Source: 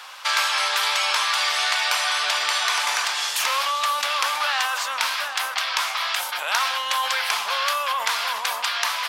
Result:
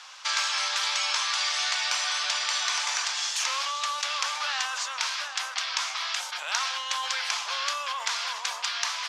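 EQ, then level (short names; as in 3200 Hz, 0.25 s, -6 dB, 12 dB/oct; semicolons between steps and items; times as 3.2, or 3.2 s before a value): HPF 170 Hz 6 dB/oct; synth low-pass 6500 Hz, resonance Q 2.2; low shelf 440 Hz -8.5 dB; -7.0 dB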